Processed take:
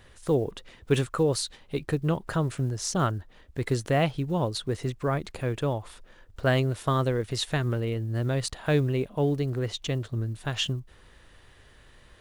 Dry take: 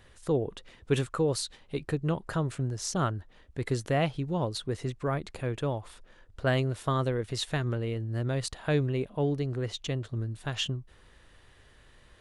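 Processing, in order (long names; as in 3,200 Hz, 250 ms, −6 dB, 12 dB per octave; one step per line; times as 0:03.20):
one scale factor per block 7 bits
level +3 dB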